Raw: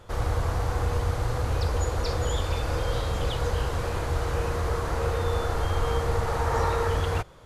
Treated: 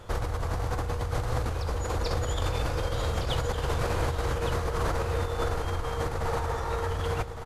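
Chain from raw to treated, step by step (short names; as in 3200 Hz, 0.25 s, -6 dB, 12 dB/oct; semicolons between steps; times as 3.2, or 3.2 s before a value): negative-ratio compressor -29 dBFS, ratio -1; echo 1.161 s -8.5 dB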